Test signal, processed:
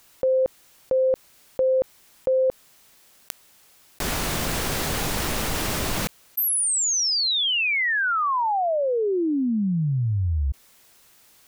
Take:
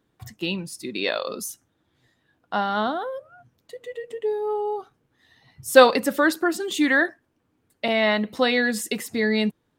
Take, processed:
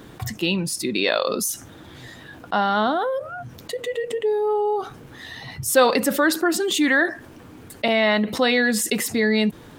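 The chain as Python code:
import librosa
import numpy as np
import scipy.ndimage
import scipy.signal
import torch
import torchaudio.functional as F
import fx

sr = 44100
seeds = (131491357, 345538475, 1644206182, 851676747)

y = fx.env_flatten(x, sr, amount_pct=50)
y = y * 10.0 ** (-4.5 / 20.0)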